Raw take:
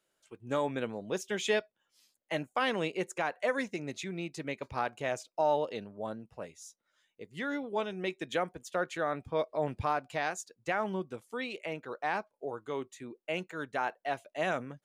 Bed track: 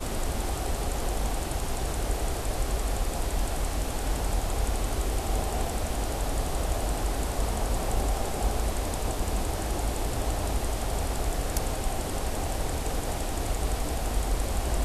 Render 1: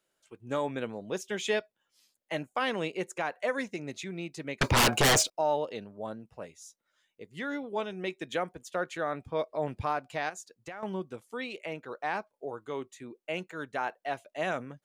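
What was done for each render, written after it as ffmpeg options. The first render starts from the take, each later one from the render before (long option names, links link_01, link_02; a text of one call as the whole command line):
ffmpeg -i in.wav -filter_complex "[0:a]asettb=1/sr,asplit=3[link_01][link_02][link_03];[link_01]atrim=end=4.614[link_04];[link_02]atrim=start=4.61:end=5.3,asetpts=PTS-STARTPTS,afade=type=in:duration=0.004:curve=qsin,afade=type=out:start_time=0.686:duration=0.004:curve=qsin,aeval=exprs='0.119*sin(PI/2*10*val(0)/0.119)':channel_layout=same[link_05];[link_03]atrim=start=5.296[link_06];[link_04][link_05]acrossfade=duration=0.004:curve1=hsin:curve2=qsin[link_07];[link_07][link_06]acrossfade=duration=0.004:curve1=qsin:curve2=hsin,asettb=1/sr,asplit=3[link_08][link_09][link_10];[link_08]atrim=end=10.294[link_11];[link_09]atrim=start=10.29:end=10.83,asetpts=PTS-STARTPTS,afade=type=in:duration=0.004:curve=qsin,afade=type=out:start_time=0.536:duration=0.004:curve=qsin,acompressor=threshold=-39dB:ratio=4:attack=3.2:release=140:knee=1:detection=peak[link_12];[link_10]atrim=start=10.826[link_13];[link_11][link_12]acrossfade=duration=0.004:curve1=hsin:curve2=qsin[link_14];[link_14][link_13]acrossfade=duration=0.004:curve1=qsin:curve2=hsin" out.wav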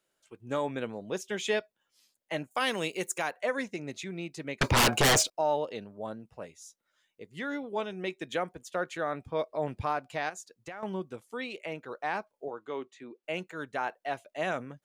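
ffmpeg -i in.wav -filter_complex "[0:a]asplit=3[link_01][link_02][link_03];[link_01]afade=type=out:start_time=2.5:duration=0.02[link_04];[link_02]aemphasis=mode=production:type=75fm,afade=type=in:start_time=2.5:duration=0.02,afade=type=out:start_time=3.3:duration=0.02[link_05];[link_03]afade=type=in:start_time=3.3:duration=0.02[link_06];[link_04][link_05][link_06]amix=inputs=3:normalize=0,asettb=1/sr,asplit=3[link_07][link_08][link_09];[link_07]atrim=end=12.484[link_10];[link_08]atrim=start=12.48:end=13.24,asetpts=PTS-STARTPTS,afade=type=in:duration=0.004:curve=qsin,afade=type=out:start_time=0.756:duration=0.004:curve=qsin,highpass=210,lowpass=4400[link_11];[link_09]atrim=start=13.236[link_12];[link_10][link_11]acrossfade=duration=0.004:curve1=hsin:curve2=qsin[link_13];[link_13][link_12]acrossfade=duration=0.004:curve1=qsin:curve2=hsin" out.wav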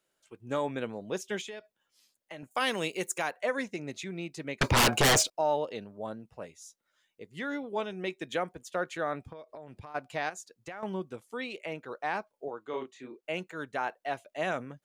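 ffmpeg -i in.wav -filter_complex "[0:a]asettb=1/sr,asplit=3[link_01][link_02][link_03];[link_01]atrim=end=1.414[link_04];[link_02]atrim=start=1.41:end=2.43,asetpts=PTS-STARTPTS,afade=type=in:duration=0.004:curve=qsin,afade=type=out:start_time=1.016:duration=0.004:curve=qsin,acompressor=threshold=-40dB:ratio=6:attack=3.2:release=140:knee=1:detection=peak[link_05];[link_03]atrim=start=2.426[link_06];[link_04][link_05]acrossfade=duration=0.004:curve1=hsin:curve2=qsin[link_07];[link_07][link_06]acrossfade=duration=0.004:curve1=qsin:curve2=hsin,asplit=3[link_08][link_09][link_10];[link_08]afade=type=out:start_time=9.31:duration=0.02[link_11];[link_09]acompressor=threshold=-41dB:ratio=20:attack=3.2:release=140:knee=1:detection=peak,afade=type=in:start_time=9.31:duration=0.02,afade=type=out:start_time=9.94:duration=0.02[link_12];[link_10]afade=type=in:start_time=9.94:duration=0.02[link_13];[link_11][link_12][link_13]amix=inputs=3:normalize=0,asettb=1/sr,asplit=3[link_14][link_15][link_16];[link_14]atrim=end=12.704[link_17];[link_15]atrim=start=12.7:end=13.21,asetpts=PTS-STARTPTS,afade=type=in:duration=0.004:curve=qsin,afade=type=out:start_time=0.506:duration=0.004:curve=qsin,asplit=2[link_18][link_19];[link_19]adelay=31,volume=-4dB[link_20];[link_18][link_20]amix=inputs=2:normalize=0,atrim=end_sample=22491[link_21];[link_16]atrim=start=13.206[link_22];[link_17][link_21]acrossfade=duration=0.004:curve1=hsin:curve2=qsin[link_23];[link_23][link_22]acrossfade=duration=0.004:curve1=qsin:curve2=hsin" out.wav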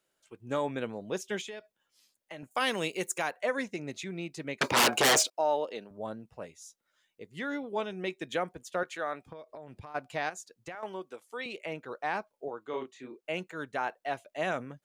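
ffmpeg -i in.wav -filter_complex "[0:a]asettb=1/sr,asplit=3[link_01][link_02][link_03];[link_01]atrim=end=4.584[link_04];[link_02]atrim=start=4.58:end=5.91,asetpts=PTS-STARTPTS,afade=type=in:duration=0.004:curve=qsin,afade=type=out:start_time=1.326:duration=0.004:curve=qsin,highpass=260[link_05];[link_03]atrim=start=5.906[link_06];[link_04][link_05]acrossfade=duration=0.004:curve1=hsin:curve2=qsin[link_07];[link_07][link_06]acrossfade=duration=0.004:curve1=qsin:curve2=hsin,asettb=1/sr,asplit=3[link_08][link_09][link_10];[link_08]atrim=end=8.834[link_11];[link_09]atrim=start=8.83:end=9.28,asetpts=PTS-STARTPTS,afade=type=in:duration=0.004:curve=qsin,afade=type=out:start_time=0.446:duration=0.004:curve=qsin,highpass=frequency=550:poles=1[link_12];[link_10]atrim=start=9.276[link_13];[link_11][link_12]acrossfade=duration=0.004:curve1=hsin:curve2=qsin[link_14];[link_14][link_13]acrossfade=duration=0.004:curve1=qsin:curve2=hsin,asettb=1/sr,asplit=3[link_15][link_16][link_17];[link_15]atrim=end=10.754[link_18];[link_16]atrim=start=10.75:end=11.46,asetpts=PTS-STARTPTS,afade=type=in:duration=0.004:curve=qsin,afade=type=out:start_time=0.706:duration=0.004:curve=qsin,highpass=410[link_19];[link_17]atrim=start=11.456[link_20];[link_18][link_19]acrossfade=duration=0.004:curve1=hsin:curve2=qsin[link_21];[link_21][link_20]acrossfade=duration=0.004:curve1=qsin:curve2=hsin" out.wav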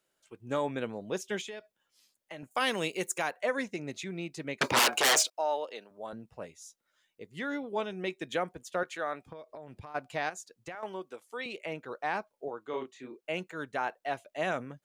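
ffmpeg -i in.wav -filter_complex "[0:a]asettb=1/sr,asplit=3[link_01][link_02][link_03];[link_01]atrim=end=4.794[link_04];[link_02]atrim=start=4.79:end=6.13,asetpts=PTS-STARTPTS,afade=type=in:duration=0.004:curve=qsin,afade=type=out:start_time=1.336:duration=0.004:curve=qsin,highpass=frequency=620:poles=1[link_05];[link_03]atrim=start=6.126[link_06];[link_04][link_05]acrossfade=duration=0.004:curve1=hsin:curve2=qsin[link_07];[link_07][link_06]acrossfade=duration=0.004:curve1=qsin:curve2=hsin" out.wav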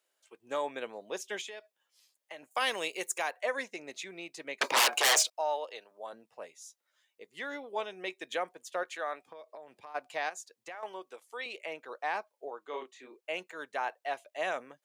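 ffmpeg -i in.wav -af "highpass=500,equalizer=frequency=1400:width=7.9:gain=-5" out.wav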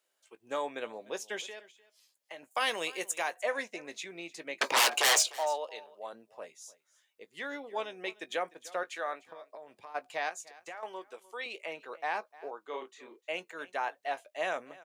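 ffmpeg -i in.wav -filter_complex "[0:a]asplit=2[link_01][link_02];[link_02]adelay=18,volume=-13.5dB[link_03];[link_01][link_03]amix=inputs=2:normalize=0,aecho=1:1:301:0.0944" out.wav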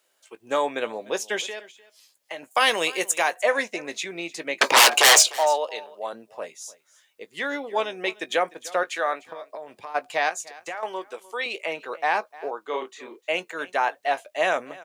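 ffmpeg -i in.wav -af "volume=10.5dB" out.wav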